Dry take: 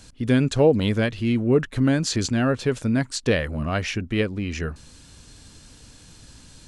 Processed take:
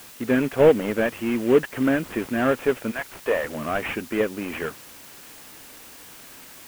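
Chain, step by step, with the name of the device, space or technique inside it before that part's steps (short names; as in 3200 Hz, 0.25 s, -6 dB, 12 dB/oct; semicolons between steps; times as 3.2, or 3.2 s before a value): 2.9–3.43 HPF 930 Hz -> 350 Hz 12 dB/oct; army field radio (BPF 320–3300 Hz; CVSD 16 kbps; white noise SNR 21 dB); gain +4.5 dB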